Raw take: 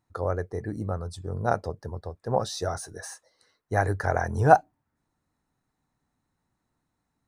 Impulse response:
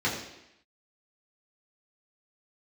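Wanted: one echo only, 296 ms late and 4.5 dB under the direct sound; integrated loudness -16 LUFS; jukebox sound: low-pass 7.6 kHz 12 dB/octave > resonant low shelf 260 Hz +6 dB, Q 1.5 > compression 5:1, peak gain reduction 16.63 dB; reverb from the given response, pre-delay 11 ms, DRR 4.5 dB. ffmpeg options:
-filter_complex "[0:a]aecho=1:1:296:0.596,asplit=2[s0][s1];[1:a]atrim=start_sample=2205,adelay=11[s2];[s1][s2]afir=irnorm=-1:irlink=0,volume=0.158[s3];[s0][s3]amix=inputs=2:normalize=0,lowpass=7600,lowshelf=f=260:t=q:w=1.5:g=6,acompressor=threshold=0.0447:ratio=5,volume=6.31"

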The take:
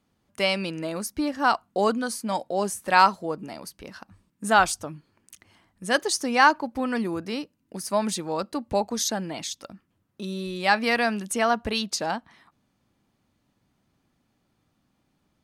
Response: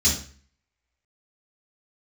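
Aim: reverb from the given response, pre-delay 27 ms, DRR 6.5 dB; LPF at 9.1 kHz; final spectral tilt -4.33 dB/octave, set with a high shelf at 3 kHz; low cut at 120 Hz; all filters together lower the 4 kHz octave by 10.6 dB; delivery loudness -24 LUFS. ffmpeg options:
-filter_complex "[0:a]highpass=120,lowpass=9100,highshelf=f=3000:g=-9,equalizer=f=4000:t=o:g=-7,asplit=2[s0][s1];[1:a]atrim=start_sample=2205,adelay=27[s2];[s1][s2]afir=irnorm=-1:irlink=0,volume=0.112[s3];[s0][s3]amix=inputs=2:normalize=0,volume=1.12"

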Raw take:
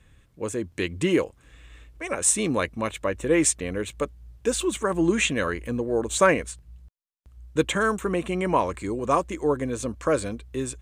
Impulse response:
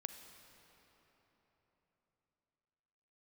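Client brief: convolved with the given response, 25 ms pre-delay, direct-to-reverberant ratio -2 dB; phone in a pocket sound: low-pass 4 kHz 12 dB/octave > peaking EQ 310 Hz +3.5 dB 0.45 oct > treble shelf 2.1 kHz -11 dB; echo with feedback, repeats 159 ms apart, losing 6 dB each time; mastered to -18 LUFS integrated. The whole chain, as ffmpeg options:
-filter_complex "[0:a]aecho=1:1:159|318|477|636|795|954:0.501|0.251|0.125|0.0626|0.0313|0.0157,asplit=2[s0][s1];[1:a]atrim=start_sample=2205,adelay=25[s2];[s1][s2]afir=irnorm=-1:irlink=0,volume=1.78[s3];[s0][s3]amix=inputs=2:normalize=0,lowpass=4000,equalizer=f=310:t=o:w=0.45:g=3.5,highshelf=f=2100:g=-11,volume=1.41"

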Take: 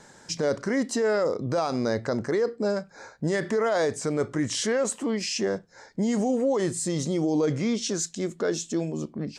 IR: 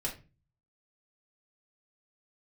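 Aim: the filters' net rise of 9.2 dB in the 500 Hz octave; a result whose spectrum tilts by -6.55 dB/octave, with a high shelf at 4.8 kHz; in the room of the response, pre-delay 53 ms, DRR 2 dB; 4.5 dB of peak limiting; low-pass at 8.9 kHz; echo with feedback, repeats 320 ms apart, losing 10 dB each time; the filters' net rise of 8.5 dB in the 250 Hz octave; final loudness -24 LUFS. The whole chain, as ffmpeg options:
-filter_complex "[0:a]lowpass=8900,equalizer=f=250:t=o:g=8,equalizer=f=500:t=o:g=8.5,highshelf=f=4800:g=-4.5,alimiter=limit=0.282:level=0:latency=1,aecho=1:1:320|640|960|1280:0.316|0.101|0.0324|0.0104,asplit=2[s0][s1];[1:a]atrim=start_sample=2205,adelay=53[s2];[s1][s2]afir=irnorm=-1:irlink=0,volume=0.596[s3];[s0][s3]amix=inputs=2:normalize=0,volume=0.422"

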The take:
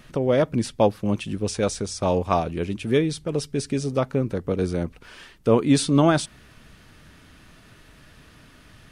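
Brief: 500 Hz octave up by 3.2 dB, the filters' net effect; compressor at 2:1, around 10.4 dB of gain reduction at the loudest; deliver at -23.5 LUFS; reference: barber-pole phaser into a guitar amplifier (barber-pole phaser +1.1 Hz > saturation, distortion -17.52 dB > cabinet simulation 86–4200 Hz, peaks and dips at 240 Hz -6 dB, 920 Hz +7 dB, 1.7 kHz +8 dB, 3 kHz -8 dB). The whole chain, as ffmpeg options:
-filter_complex "[0:a]equalizer=f=500:t=o:g=3.5,acompressor=threshold=0.0282:ratio=2,asplit=2[s0][s1];[s1]afreqshift=1.1[s2];[s0][s2]amix=inputs=2:normalize=1,asoftclip=threshold=0.075,highpass=86,equalizer=f=240:t=q:w=4:g=-6,equalizer=f=920:t=q:w=4:g=7,equalizer=f=1700:t=q:w=4:g=8,equalizer=f=3000:t=q:w=4:g=-8,lowpass=f=4200:w=0.5412,lowpass=f=4200:w=1.3066,volume=3.76"

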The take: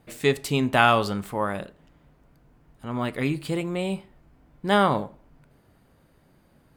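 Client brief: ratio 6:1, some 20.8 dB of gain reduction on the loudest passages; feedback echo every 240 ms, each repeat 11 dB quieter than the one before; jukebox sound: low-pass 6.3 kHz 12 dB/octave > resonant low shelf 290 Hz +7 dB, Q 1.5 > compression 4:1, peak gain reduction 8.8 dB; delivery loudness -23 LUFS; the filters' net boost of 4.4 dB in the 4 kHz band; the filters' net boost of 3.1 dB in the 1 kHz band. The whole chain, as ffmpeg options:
-af "equalizer=f=1000:t=o:g=4.5,equalizer=f=4000:t=o:g=6,acompressor=threshold=0.0224:ratio=6,lowpass=6300,lowshelf=f=290:t=q:w=1.5:g=7,aecho=1:1:240|480|720:0.282|0.0789|0.0221,acompressor=threshold=0.02:ratio=4,volume=6.68"

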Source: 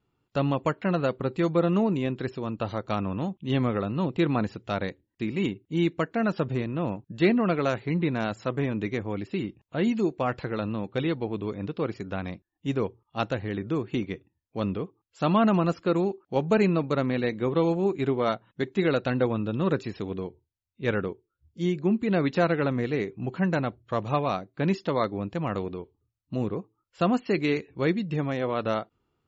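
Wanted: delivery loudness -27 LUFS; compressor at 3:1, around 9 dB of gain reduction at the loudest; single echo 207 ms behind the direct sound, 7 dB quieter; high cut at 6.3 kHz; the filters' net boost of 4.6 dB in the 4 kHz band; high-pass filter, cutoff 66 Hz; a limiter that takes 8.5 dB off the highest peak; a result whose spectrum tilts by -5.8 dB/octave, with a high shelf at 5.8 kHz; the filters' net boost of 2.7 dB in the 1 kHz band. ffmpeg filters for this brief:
-af "highpass=66,lowpass=6300,equalizer=f=1000:t=o:g=3.5,equalizer=f=4000:t=o:g=8.5,highshelf=f=5800:g=-8.5,acompressor=threshold=0.0355:ratio=3,alimiter=limit=0.0708:level=0:latency=1,aecho=1:1:207:0.447,volume=2.24"

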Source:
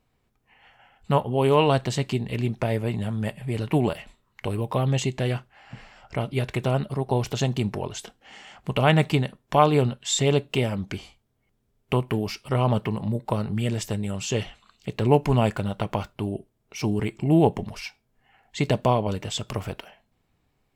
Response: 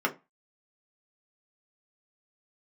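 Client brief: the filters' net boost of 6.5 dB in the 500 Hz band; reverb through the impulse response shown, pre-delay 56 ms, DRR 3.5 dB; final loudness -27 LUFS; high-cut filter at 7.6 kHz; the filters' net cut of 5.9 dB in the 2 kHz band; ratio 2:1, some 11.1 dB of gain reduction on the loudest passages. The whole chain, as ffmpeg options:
-filter_complex "[0:a]lowpass=7600,equalizer=f=500:t=o:g=8.5,equalizer=f=2000:t=o:g=-8.5,acompressor=threshold=0.0355:ratio=2,asplit=2[s0][s1];[1:a]atrim=start_sample=2205,adelay=56[s2];[s1][s2]afir=irnorm=-1:irlink=0,volume=0.2[s3];[s0][s3]amix=inputs=2:normalize=0,volume=1.12"

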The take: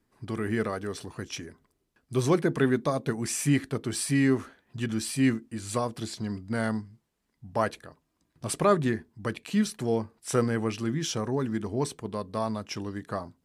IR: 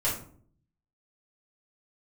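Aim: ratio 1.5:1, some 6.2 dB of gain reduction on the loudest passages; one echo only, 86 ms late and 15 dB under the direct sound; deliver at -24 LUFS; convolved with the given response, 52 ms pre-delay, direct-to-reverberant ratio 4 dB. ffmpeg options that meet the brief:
-filter_complex "[0:a]acompressor=threshold=0.0158:ratio=1.5,aecho=1:1:86:0.178,asplit=2[s0][s1];[1:a]atrim=start_sample=2205,adelay=52[s2];[s1][s2]afir=irnorm=-1:irlink=0,volume=0.224[s3];[s0][s3]amix=inputs=2:normalize=0,volume=2.37"

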